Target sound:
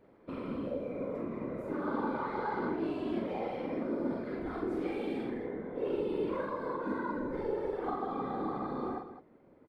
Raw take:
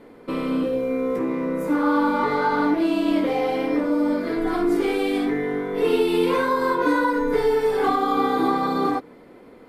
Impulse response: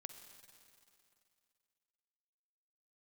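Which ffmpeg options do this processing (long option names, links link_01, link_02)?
-af "asetnsamples=nb_out_samples=441:pad=0,asendcmd='5.3 lowpass f 1000',lowpass=frequency=2200:poles=1,afftfilt=real='hypot(re,im)*cos(2*PI*random(0))':imag='hypot(re,im)*sin(2*PI*random(1))':win_size=512:overlap=0.75,aecho=1:1:43.73|207:0.562|0.282,volume=-8.5dB"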